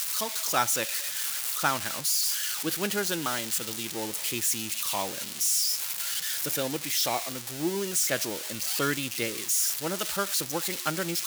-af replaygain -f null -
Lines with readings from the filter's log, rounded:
track_gain = +11.0 dB
track_peak = 0.167